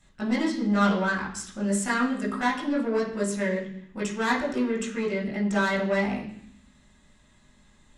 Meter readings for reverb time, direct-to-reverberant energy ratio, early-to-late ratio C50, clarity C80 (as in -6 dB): 0.65 s, -5.0 dB, 7.0 dB, 10.5 dB